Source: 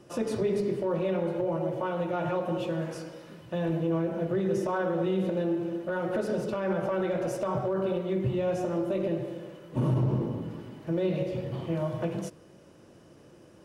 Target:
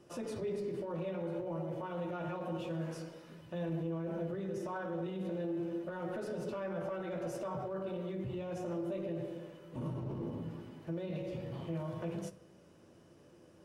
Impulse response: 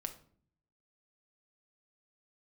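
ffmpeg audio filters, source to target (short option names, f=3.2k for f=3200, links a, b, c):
-filter_complex "[0:a]alimiter=level_in=1.5dB:limit=-24dB:level=0:latency=1:release=23,volume=-1.5dB,asplit=2[a][b];[1:a]atrim=start_sample=2205,adelay=12[c];[b][c]afir=irnorm=-1:irlink=0,volume=-7.5dB[d];[a][d]amix=inputs=2:normalize=0,volume=-7dB"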